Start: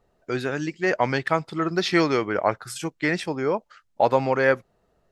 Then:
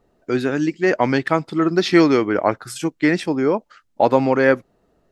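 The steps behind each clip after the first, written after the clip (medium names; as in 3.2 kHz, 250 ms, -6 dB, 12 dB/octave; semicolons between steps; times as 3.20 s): peaking EQ 280 Hz +8 dB 0.92 oct; trim +2.5 dB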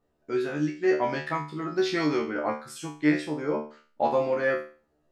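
feedback comb 75 Hz, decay 0.38 s, harmonics all, mix 100%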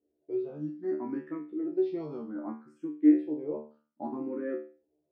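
band-pass filter 300 Hz, Q 2.8; barber-pole phaser +0.64 Hz; trim +4 dB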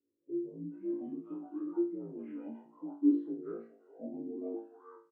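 frequency axis rescaled in octaves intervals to 80%; bands offset in time lows, highs 420 ms, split 670 Hz; trim -3.5 dB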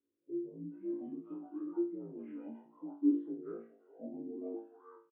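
resampled via 8 kHz; trim -2.5 dB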